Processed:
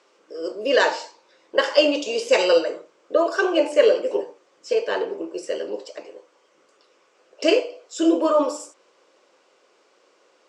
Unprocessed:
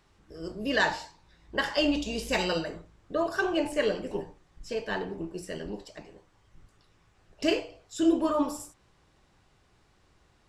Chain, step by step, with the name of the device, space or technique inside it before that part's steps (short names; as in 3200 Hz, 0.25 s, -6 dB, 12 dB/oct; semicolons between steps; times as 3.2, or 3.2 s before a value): phone speaker on a table (speaker cabinet 350–7700 Hz, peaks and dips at 520 Hz +9 dB, 790 Hz -6 dB, 1800 Hz -6 dB, 3800 Hz -5 dB); gain +8.5 dB